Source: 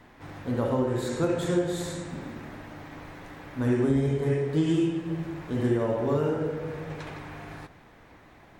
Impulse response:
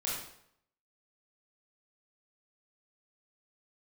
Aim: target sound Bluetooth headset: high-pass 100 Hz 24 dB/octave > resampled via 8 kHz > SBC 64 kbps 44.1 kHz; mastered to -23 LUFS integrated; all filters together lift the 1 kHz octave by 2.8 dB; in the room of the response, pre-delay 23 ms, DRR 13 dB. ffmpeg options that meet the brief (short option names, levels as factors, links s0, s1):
-filter_complex "[0:a]equalizer=f=1000:t=o:g=3.5,asplit=2[s0][s1];[1:a]atrim=start_sample=2205,adelay=23[s2];[s1][s2]afir=irnorm=-1:irlink=0,volume=0.133[s3];[s0][s3]amix=inputs=2:normalize=0,highpass=f=100:w=0.5412,highpass=f=100:w=1.3066,aresample=8000,aresample=44100,volume=1.68" -ar 44100 -c:a sbc -b:a 64k